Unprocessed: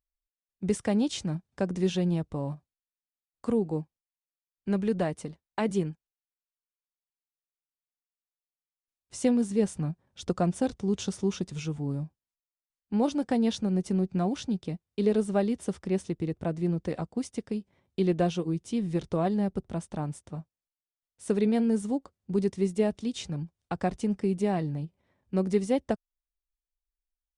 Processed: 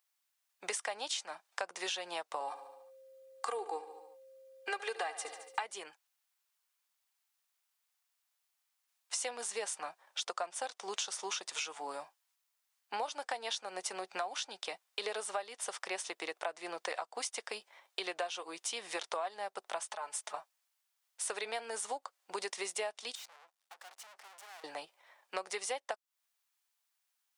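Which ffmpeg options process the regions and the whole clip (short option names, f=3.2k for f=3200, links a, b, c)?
-filter_complex "[0:a]asettb=1/sr,asplit=3[a][b][c];[a]atrim=end=2.404[d];[b]atrim=start=2.4:end=5.63,asetpts=PTS-STARTPTS,afade=t=in:d=0.004:c=qsin,afade=t=out:st=3.226:d=0.004:c=qsin,aecho=1:1:2.5:0.93,atrim=end_sample=142443,aeval=exprs='val(0)+0.00141*sin(2*PI*530*n/s)':c=same,aecho=1:1:72|144|216|288|360:0.158|0.0903|0.0515|0.0294|0.0167,atrim=end_sample=142443[e];[c]atrim=start=5.626[f];[d][e]acrossfade=d=0.004:c1=hsin:c2=qsin[g];[g][f]acrossfade=d=0.004:c1=qsin:c2=hsin,asettb=1/sr,asplit=3[h][i][j];[h]atrim=end=19.824[k];[i]atrim=start=19.82:end=20.34,asetpts=PTS-STARTPTS,afade=t=in:d=0.004:c=qsin,afade=t=out:st=0.516:d=0.004:c=qsin,lowshelf=f=120:g=-8,aecho=1:1:4.7:0.89,atrim=end_sample=22932,acompressor=threshold=-43dB:ratio=6:attack=3.2:release=140:knee=1:detection=peak[l];[j]atrim=start=20.336[m];[k][l]acrossfade=d=0.004:c1=hsin:c2=qsin[n];[n][m]acrossfade=d=0.004:c1=qsin:c2=hsin,asettb=1/sr,asplit=3[o][p][q];[o]atrim=end=23.154[r];[p]atrim=start=23.15:end=24.64,asetpts=PTS-STARTPTS,afade=t=in:d=0.004:c=qsin,afade=t=out:st=1.486:d=0.004:c=qsin,aeval=exprs='max(val(0),0)':c=same,aeval=exprs='(tanh(178*val(0)+0.75)-tanh(0.75))/178':c=same[s];[q]atrim=start=24.636[t];[r][s]acrossfade=d=0.004:c1=hsin:c2=qsin[u];[u][t]acrossfade=d=0.004:c1=qsin:c2=hsin,highpass=f=740:w=0.5412,highpass=f=740:w=1.3066,acompressor=threshold=-49dB:ratio=8,volume=14dB"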